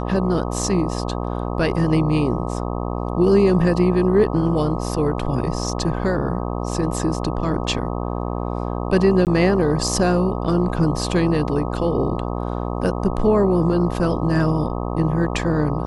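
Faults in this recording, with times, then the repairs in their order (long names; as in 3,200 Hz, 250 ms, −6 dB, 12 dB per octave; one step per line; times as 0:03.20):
mains buzz 60 Hz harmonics 21 −25 dBFS
0:09.25–0:09.27: drop-out 18 ms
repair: hum removal 60 Hz, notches 21
repair the gap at 0:09.25, 18 ms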